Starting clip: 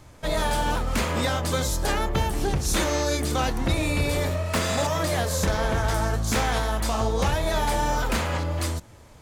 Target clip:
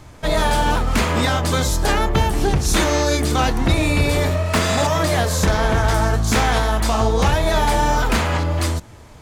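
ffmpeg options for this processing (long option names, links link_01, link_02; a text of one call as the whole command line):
ffmpeg -i in.wav -af "highshelf=frequency=7200:gain=-4.5,bandreject=frequency=540:width=12,volume=7dB" out.wav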